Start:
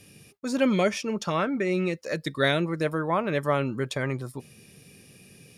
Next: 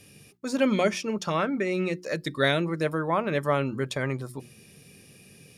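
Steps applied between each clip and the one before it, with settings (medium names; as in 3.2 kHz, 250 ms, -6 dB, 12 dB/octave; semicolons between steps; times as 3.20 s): hum notches 60/120/180/240/300/360 Hz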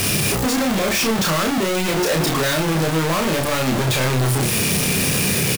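one-bit comparator; doubling 31 ms -3.5 dB; trim +7.5 dB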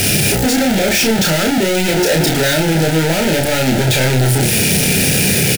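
Butterworth band-stop 1.1 kHz, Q 2.4; trim +5.5 dB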